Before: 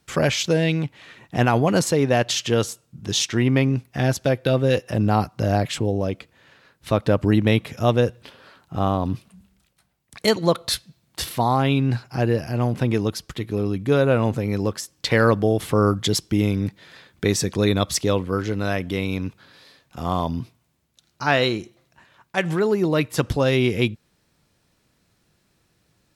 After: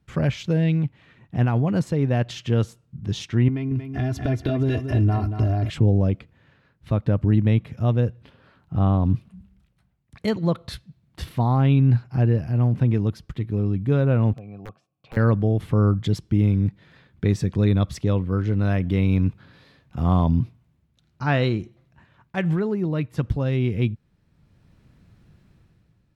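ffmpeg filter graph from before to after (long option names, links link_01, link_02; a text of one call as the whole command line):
ffmpeg -i in.wav -filter_complex "[0:a]asettb=1/sr,asplit=3[link_01][link_02][link_03];[link_01]atrim=end=3.484[link_04];[link_02]atrim=start=3.48:end=5.7,asetpts=PTS-STARTPTS,afade=type=in:duration=0.004:curve=qsin,afade=type=out:start_time=2.216:duration=0.004:curve=qsin,aecho=1:1:2.9:0.93,atrim=end_sample=97902,acompressor=threshold=-23dB:ratio=6:attack=3.2:release=140:knee=1:detection=peak,aecho=1:1:232|464|696:0.398|0.0955|0.0229,atrim=end_sample=97902[link_05];[link_03]atrim=start=5.696[link_06];[link_04][link_05]acrossfade=duration=0.004:curve1=hsin:curve2=qsin[link_07];[link_07][link_06]acrossfade=duration=0.004:curve1=qsin:curve2=hsin,asettb=1/sr,asplit=3[link_08][link_09][link_10];[link_08]atrim=end=14.334[link_11];[link_09]atrim=start=14.33:end=15.17,asetpts=PTS-STARTPTS,afade=type=in:duration=0.004:curve=qsin,afade=type=out:start_time=0.836:duration=0.004:curve=qsin,asplit=3[link_12][link_13][link_14];[link_12]bandpass=frequency=730:width_type=q:width=8,volume=0dB[link_15];[link_13]bandpass=frequency=1090:width_type=q:width=8,volume=-6dB[link_16];[link_14]bandpass=frequency=2440:width_type=q:width=8,volume=-9dB[link_17];[link_15][link_16][link_17]amix=inputs=3:normalize=0,equalizer=frequency=130:width=0.65:gain=14,aeval=exprs='(mod(16.8*val(0)+1,2)-1)/16.8':channel_layout=same[link_18];[link_10]atrim=start=15.166[link_19];[link_11][link_18]acrossfade=duration=0.004:curve1=hsin:curve2=qsin[link_20];[link_20][link_19]acrossfade=duration=0.004:curve1=qsin:curve2=hsin,bass=frequency=250:gain=13,treble=frequency=4000:gain=-11,dynaudnorm=framelen=110:gausssize=11:maxgain=11.5dB,volume=-8.5dB" out.wav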